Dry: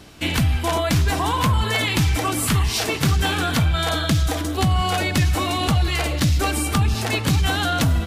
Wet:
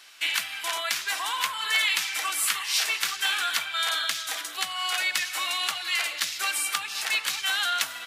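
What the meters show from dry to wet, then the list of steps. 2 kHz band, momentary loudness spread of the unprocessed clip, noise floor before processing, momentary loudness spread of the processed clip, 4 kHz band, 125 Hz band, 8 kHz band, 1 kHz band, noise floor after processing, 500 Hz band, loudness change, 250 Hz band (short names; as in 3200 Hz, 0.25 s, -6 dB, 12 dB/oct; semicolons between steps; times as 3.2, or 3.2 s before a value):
-0.5 dB, 2 LU, -26 dBFS, 5 LU, -0.5 dB, under -40 dB, -1.0 dB, -8.0 dB, -39 dBFS, -18.5 dB, -5.5 dB, -33.0 dB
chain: Chebyshev high-pass 1700 Hz, order 2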